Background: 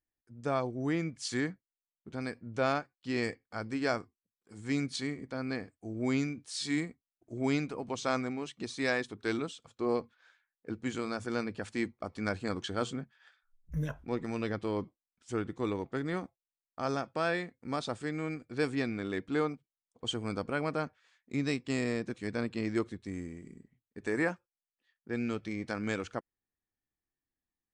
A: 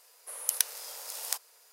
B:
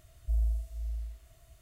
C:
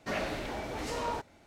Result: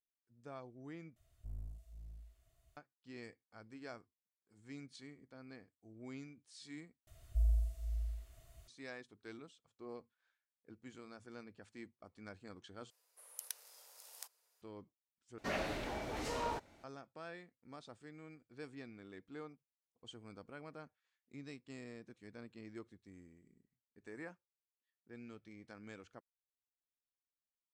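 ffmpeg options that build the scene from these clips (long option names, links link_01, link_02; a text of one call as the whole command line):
ffmpeg -i bed.wav -i cue0.wav -i cue1.wav -i cue2.wav -filter_complex "[2:a]asplit=2[link_01][link_02];[0:a]volume=-18.5dB[link_03];[link_01]aeval=exprs='clip(val(0),-1,0.0158)':channel_layout=same[link_04];[link_03]asplit=5[link_05][link_06][link_07][link_08][link_09];[link_05]atrim=end=1.164[link_10];[link_04]atrim=end=1.61,asetpts=PTS-STARTPTS,volume=-15dB[link_11];[link_06]atrim=start=2.766:end=7.074[link_12];[link_02]atrim=end=1.61,asetpts=PTS-STARTPTS,volume=-3dB[link_13];[link_07]atrim=start=8.676:end=12.904[link_14];[1:a]atrim=end=1.72,asetpts=PTS-STARTPTS,volume=-18dB[link_15];[link_08]atrim=start=14.616:end=15.384[link_16];[3:a]atrim=end=1.46,asetpts=PTS-STARTPTS,volume=-4.5dB[link_17];[link_09]atrim=start=16.836[link_18];[link_10][link_11]acrossfade=duration=0.004:curve1=hsin:curve2=hsin[link_19];[link_19][link_12]acrossfade=duration=0.004:curve1=hsin:curve2=hsin[link_20];[link_20][link_13]acrossfade=duration=0.004:curve1=hsin:curve2=hsin[link_21];[link_21][link_14]acrossfade=duration=0.004:curve1=hsin:curve2=hsin[link_22];[link_22][link_15]acrossfade=duration=0.004:curve1=hsin:curve2=hsin[link_23];[link_23][link_16]acrossfade=duration=0.004:curve1=hsin:curve2=hsin[link_24];[link_24][link_17]acrossfade=duration=0.004:curve1=hsin:curve2=hsin[link_25];[link_25][link_18]acrossfade=duration=0.004:curve1=hsin:curve2=hsin" out.wav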